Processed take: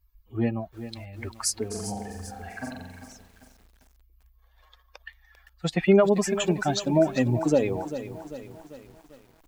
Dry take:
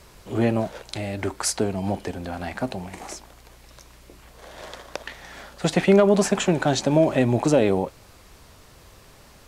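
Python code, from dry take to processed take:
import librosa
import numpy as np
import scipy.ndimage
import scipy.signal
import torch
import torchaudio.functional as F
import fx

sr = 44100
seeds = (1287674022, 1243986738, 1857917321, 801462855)

y = fx.bin_expand(x, sr, power=2.0)
y = fx.room_flutter(y, sr, wall_m=7.6, rt60_s=1.0, at=(1.7, 3.05), fade=0.02)
y = fx.echo_crushed(y, sr, ms=395, feedback_pct=55, bits=8, wet_db=-12)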